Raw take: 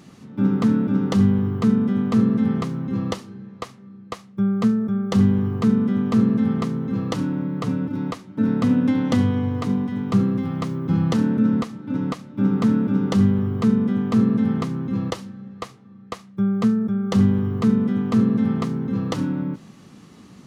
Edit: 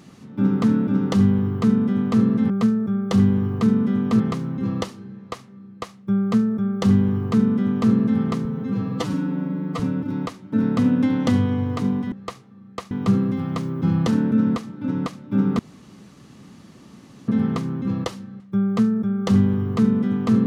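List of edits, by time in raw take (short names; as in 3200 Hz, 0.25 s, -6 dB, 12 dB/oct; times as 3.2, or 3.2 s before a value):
4.51–6.21 copy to 2.5
6.75–7.65 stretch 1.5×
12.65–14.34 room tone
15.46–16.25 move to 9.97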